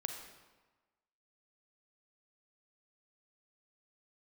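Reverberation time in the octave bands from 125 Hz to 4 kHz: 1.2, 1.2, 1.2, 1.3, 1.1, 0.95 seconds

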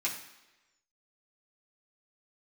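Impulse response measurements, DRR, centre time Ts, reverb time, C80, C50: −5.5 dB, 26 ms, 1.1 s, 10.0 dB, 7.5 dB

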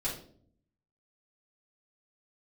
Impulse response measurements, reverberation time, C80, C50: 0.55 s, 10.5 dB, 5.5 dB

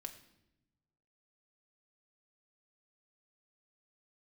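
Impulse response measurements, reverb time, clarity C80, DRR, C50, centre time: 0.90 s, 14.0 dB, 4.5 dB, 12.0 dB, 11 ms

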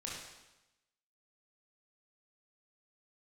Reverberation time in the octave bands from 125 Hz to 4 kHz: 1.0, 1.0, 0.95, 1.0, 0.95, 0.95 seconds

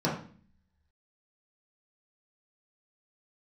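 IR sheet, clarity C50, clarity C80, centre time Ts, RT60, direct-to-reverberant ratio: 5.5 dB, 10.0 dB, 32 ms, 0.45 s, −7.0 dB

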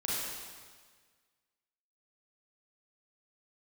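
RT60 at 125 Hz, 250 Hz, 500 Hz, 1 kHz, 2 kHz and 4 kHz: 1.7, 1.6, 1.6, 1.6, 1.6, 1.5 seconds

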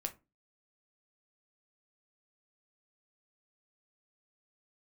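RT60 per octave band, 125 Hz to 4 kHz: 0.35, 0.40, 0.30, 0.25, 0.20, 0.15 seconds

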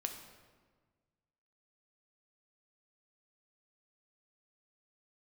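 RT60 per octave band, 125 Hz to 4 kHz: 2.0, 1.8, 1.6, 1.4, 1.2, 1.0 seconds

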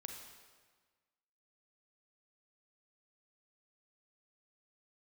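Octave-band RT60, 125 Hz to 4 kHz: 1.5, 1.5, 1.5, 1.5, 1.4, 1.3 seconds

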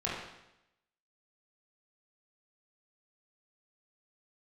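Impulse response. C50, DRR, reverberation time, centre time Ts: 0.5 dB, −7.0 dB, 0.85 s, 65 ms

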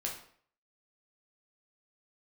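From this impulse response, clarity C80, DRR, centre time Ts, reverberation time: 10.5 dB, −2.0 dB, 28 ms, 0.55 s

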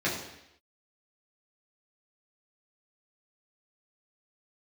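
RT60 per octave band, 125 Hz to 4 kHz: 0.75, 0.80, 0.80, 0.80, 0.90, 0.85 seconds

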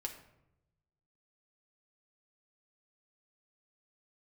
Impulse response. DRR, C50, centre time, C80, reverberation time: 2.0 dB, 9.0 dB, 16 ms, 11.5 dB, 0.85 s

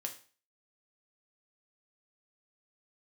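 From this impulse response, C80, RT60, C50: 16.5 dB, 0.40 s, 11.5 dB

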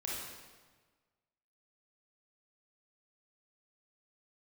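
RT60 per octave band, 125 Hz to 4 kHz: 1.6, 1.5, 1.4, 1.4, 1.3, 1.1 seconds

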